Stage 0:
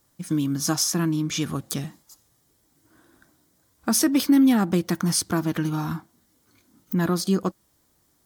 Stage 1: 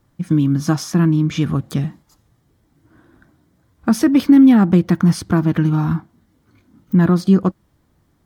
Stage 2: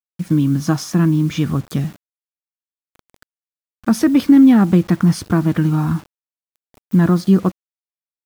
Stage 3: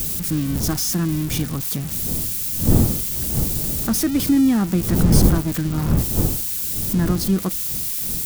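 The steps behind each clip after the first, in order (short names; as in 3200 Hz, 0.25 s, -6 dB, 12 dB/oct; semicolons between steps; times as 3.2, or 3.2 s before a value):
tone controls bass +8 dB, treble -14 dB; gain +4.5 dB
bit-crush 7-bit
switching spikes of -9 dBFS; wind noise 170 Hz -16 dBFS; gain -7 dB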